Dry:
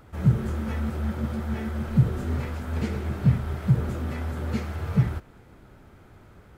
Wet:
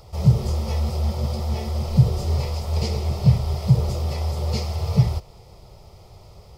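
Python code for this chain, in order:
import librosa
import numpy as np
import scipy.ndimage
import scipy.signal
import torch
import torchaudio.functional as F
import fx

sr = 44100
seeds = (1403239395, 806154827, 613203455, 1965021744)

y = fx.peak_eq(x, sr, hz=5000.0, db=14.5, octaves=0.46)
y = fx.fixed_phaser(y, sr, hz=650.0, stages=4)
y = F.gain(torch.from_numpy(y), 7.5).numpy()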